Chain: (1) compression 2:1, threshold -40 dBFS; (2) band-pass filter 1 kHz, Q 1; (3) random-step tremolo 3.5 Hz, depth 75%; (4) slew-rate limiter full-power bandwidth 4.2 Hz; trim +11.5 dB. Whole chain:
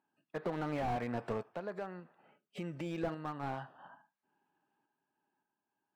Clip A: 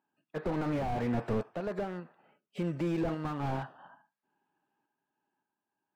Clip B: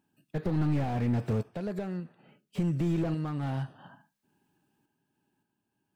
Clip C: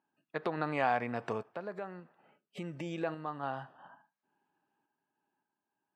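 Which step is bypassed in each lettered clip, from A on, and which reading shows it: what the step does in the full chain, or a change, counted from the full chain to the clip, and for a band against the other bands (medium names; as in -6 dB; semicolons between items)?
1, mean gain reduction 7.5 dB; 2, 125 Hz band +12.0 dB; 4, distortion -1 dB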